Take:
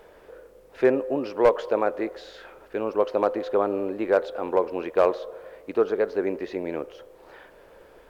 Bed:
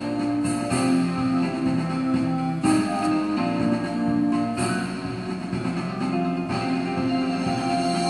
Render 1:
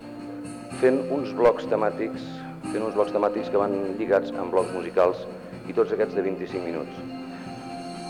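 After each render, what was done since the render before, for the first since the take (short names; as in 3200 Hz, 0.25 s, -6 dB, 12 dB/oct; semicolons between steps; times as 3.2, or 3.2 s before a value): add bed -12.5 dB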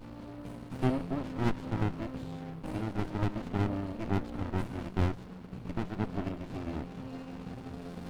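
fixed phaser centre 1800 Hz, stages 6; running maximum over 65 samples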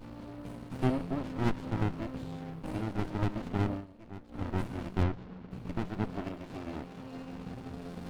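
3.71–4.43 dip -15 dB, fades 0.15 s; 5.03–5.51 air absorption 150 m; 6.13–7.16 low shelf 200 Hz -7 dB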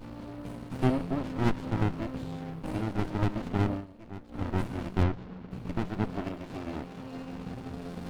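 gain +3 dB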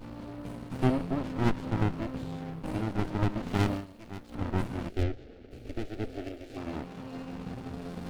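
3.48–4.35 high shelf 2500 Hz +11.5 dB; 4.89–6.57 fixed phaser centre 420 Hz, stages 4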